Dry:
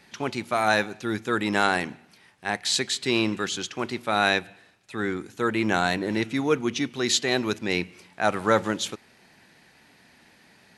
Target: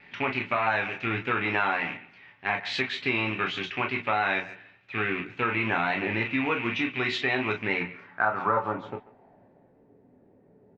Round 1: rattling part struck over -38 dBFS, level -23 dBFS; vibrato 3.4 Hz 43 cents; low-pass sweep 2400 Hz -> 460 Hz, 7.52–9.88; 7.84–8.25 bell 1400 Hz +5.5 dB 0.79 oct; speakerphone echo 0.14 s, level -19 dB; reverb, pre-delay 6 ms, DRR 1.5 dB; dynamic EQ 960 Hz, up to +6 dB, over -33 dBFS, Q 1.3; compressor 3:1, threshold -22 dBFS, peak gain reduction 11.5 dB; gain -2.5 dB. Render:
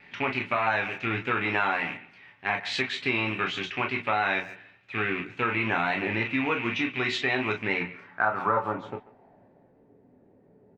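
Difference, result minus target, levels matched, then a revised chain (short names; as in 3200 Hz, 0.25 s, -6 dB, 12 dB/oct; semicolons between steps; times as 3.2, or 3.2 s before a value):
8000 Hz band +4.0 dB
rattling part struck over -38 dBFS, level -23 dBFS; vibrato 3.4 Hz 43 cents; low-pass sweep 2400 Hz -> 460 Hz, 7.52–9.88; 7.84–8.25 bell 1400 Hz +5.5 dB 0.79 oct; speakerphone echo 0.14 s, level -19 dB; reverb, pre-delay 6 ms, DRR 1.5 dB; dynamic EQ 960 Hz, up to +6 dB, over -33 dBFS, Q 1.3; LPF 5700 Hz 12 dB/oct; compressor 3:1, threshold -22 dBFS, peak gain reduction 11.5 dB; gain -2.5 dB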